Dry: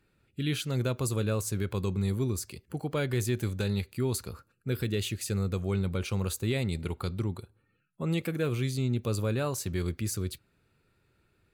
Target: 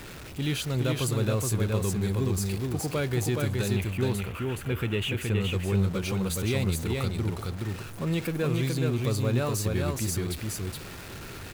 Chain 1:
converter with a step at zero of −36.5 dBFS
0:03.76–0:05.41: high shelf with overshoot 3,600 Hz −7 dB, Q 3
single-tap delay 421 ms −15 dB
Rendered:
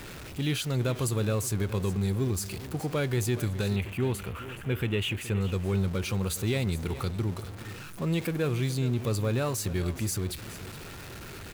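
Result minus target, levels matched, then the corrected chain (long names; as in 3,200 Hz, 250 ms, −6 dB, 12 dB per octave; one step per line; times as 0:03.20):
echo-to-direct −12 dB
converter with a step at zero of −36.5 dBFS
0:03.76–0:05.41: high shelf with overshoot 3,600 Hz −7 dB, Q 3
single-tap delay 421 ms −3 dB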